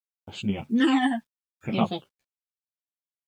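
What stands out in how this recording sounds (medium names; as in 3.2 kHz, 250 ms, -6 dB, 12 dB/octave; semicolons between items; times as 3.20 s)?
phasing stages 12, 0.64 Hz, lowest notch 400–1900 Hz; a quantiser's noise floor 12-bit, dither none; random-step tremolo; a shimmering, thickened sound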